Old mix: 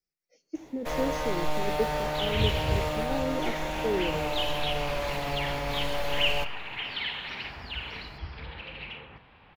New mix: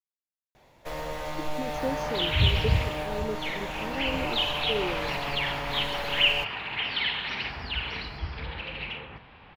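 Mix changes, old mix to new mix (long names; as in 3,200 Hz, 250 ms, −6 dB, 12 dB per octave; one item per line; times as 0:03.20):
speech: entry +0.85 s
second sound +6.5 dB
reverb: off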